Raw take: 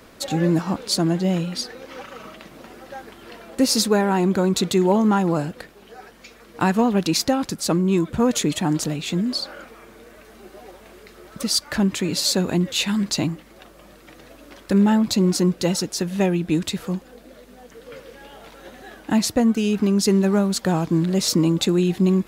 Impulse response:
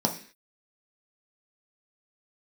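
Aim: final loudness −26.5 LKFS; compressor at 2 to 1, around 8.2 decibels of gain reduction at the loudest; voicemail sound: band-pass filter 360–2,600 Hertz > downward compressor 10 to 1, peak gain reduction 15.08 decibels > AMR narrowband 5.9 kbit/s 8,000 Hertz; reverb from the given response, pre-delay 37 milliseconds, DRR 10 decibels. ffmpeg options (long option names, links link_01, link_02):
-filter_complex "[0:a]acompressor=threshold=-29dB:ratio=2,asplit=2[link_01][link_02];[1:a]atrim=start_sample=2205,adelay=37[link_03];[link_02][link_03]afir=irnorm=-1:irlink=0,volume=-20dB[link_04];[link_01][link_04]amix=inputs=2:normalize=0,highpass=360,lowpass=2600,acompressor=threshold=-38dB:ratio=10,volume=18.5dB" -ar 8000 -c:a libopencore_amrnb -b:a 5900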